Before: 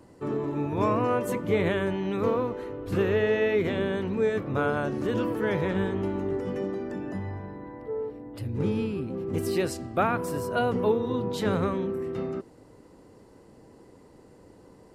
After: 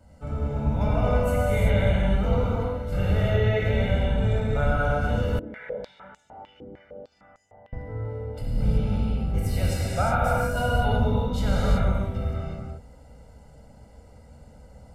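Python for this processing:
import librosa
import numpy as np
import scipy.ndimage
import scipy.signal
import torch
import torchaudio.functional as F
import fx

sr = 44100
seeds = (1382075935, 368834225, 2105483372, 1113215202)

y = fx.octave_divider(x, sr, octaves=2, level_db=3.0)
y = y + 0.97 * np.pad(y, (int(1.4 * sr / 1000.0), 0))[:len(y)]
y = fx.rev_gated(y, sr, seeds[0], gate_ms=400, shape='flat', drr_db=-5.5)
y = fx.filter_held_bandpass(y, sr, hz=6.6, low_hz=320.0, high_hz=7100.0, at=(5.39, 7.73))
y = y * 10.0 ** (-7.5 / 20.0)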